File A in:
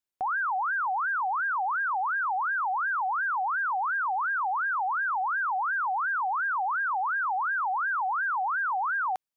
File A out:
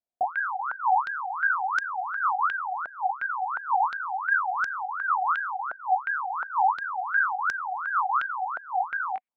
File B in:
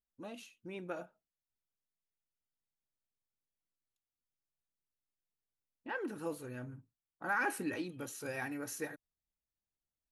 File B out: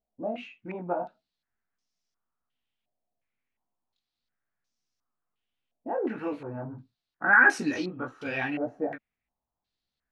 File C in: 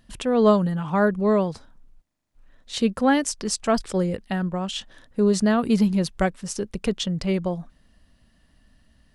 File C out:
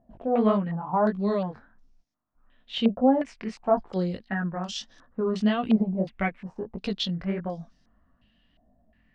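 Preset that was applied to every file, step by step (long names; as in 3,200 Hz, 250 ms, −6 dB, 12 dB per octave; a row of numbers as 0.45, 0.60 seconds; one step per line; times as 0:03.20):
hollow resonant body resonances 230/710 Hz, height 6 dB, ringing for 40 ms
chorus effect 1.6 Hz, delay 15 ms, depth 7.8 ms
low-pass on a step sequencer 2.8 Hz 670–5,600 Hz
loudness normalisation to −27 LKFS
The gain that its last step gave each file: −2.0, +9.0, −5.0 decibels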